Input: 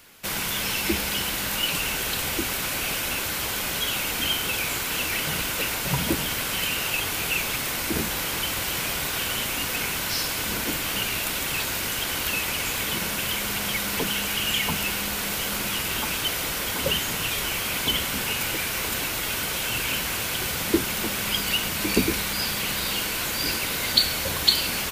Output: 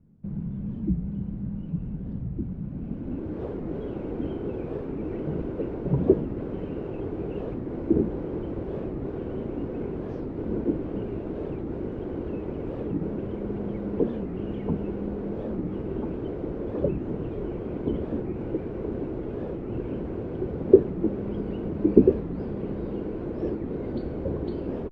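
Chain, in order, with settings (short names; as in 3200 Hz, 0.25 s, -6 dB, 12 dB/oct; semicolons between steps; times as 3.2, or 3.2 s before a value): low-pass sweep 180 Hz -> 380 Hz, 2.63–3.46; record warp 45 rpm, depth 250 cents; gain +2 dB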